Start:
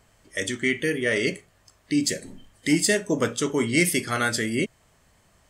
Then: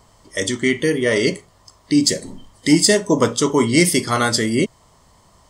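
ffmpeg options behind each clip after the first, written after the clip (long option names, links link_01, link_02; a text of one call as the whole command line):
ffmpeg -i in.wav -af "equalizer=frequency=1000:width_type=o:width=0.33:gain=9,equalizer=frequency=1600:width_type=o:width=0.33:gain=-9,equalizer=frequency=2500:width_type=o:width=0.33:gain=-9,equalizer=frequency=5000:width_type=o:width=0.33:gain=4,equalizer=frequency=12500:width_type=o:width=0.33:gain=-8,volume=7.5dB" out.wav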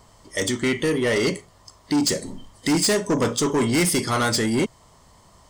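ffmpeg -i in.wav -af "asoftclip=type=tanh:threshold=-16dB" out.wav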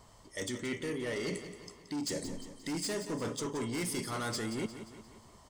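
ffmpeg -i in.wav -af "areverse,acompressor=threshold=-29dB:ratio=6,areverse,aecho=1:1:176|352|528|704|880:0.282|0.141|0.0705|0.0352|0.0176,volume=-6dB" out.wav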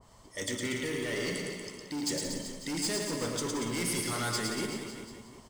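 ffmpeg -i in.wav -af "acrusher=bits=7:mode=log:mix=0:aa=0.000001,aecho=1:1:110|236.5|382|549.3|741.7:0.631|0.398|0.251|0.158|0.1,adynamicequalizer=threshold=0.00398:dfrequency=1600:dqfactor=0.7:tfrequency=1600:tqfactor=0.7:attack=5:release=100:ratio=0.375:range=2:mode=boostabove:tftype=highshelf" out.wav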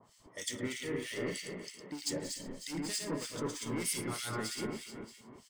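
ffmpeg -i in.wav -filter_complex "[0:a]acrossover=split=110|3700[link_01][link_02][link_03];[link_01]aeval=exprs='val(0)*gte(abs(val(0)),0.00133)':channel_layout=same[link_04];[link_04][link_02][link_03]amix=inputs=3:normalize=0,acrossover=split=2000[link_05][link_06];[link_05]aeval=exprs='val(0)*(1-1/2+1/2*cos(2*PI*3.2*n/s))':channel_layout=same[link_07];[link_06]aeval=exprs='val(0)*(1-1/2-1/2*cos(2*PI*3.2*n/s))':channel_layout=same[link_08];[link_07][link_08]amix=inputs=2:normalize=0" out.wav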